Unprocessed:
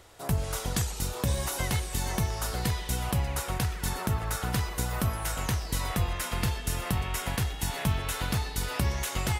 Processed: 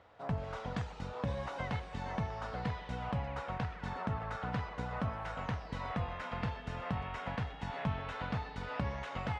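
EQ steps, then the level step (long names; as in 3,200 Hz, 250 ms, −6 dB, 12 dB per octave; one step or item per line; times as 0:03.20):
high-pass filter 280 Hz 6 dB per octave
head-to-tape spacing loss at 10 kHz 43 dB
parametric band 360 Hz −12.5 dB 0.36 octaves
+1.0 dB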